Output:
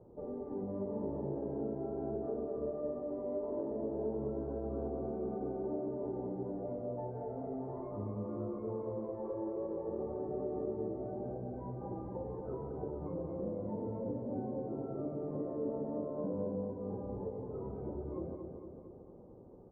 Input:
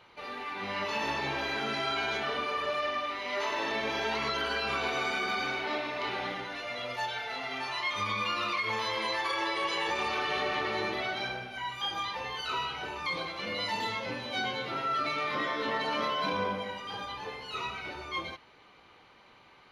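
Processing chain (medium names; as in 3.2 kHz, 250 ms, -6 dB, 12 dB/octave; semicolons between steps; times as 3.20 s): inverse Chebyshev low-pass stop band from 3 kHz, stop band 80 dB; compression 3:1, threshold -48 dBFS, peak gain reduction 12 dB; on a send: feedback delay 228 ms, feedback 58%, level -6 dB; on the sum: trim +9 dB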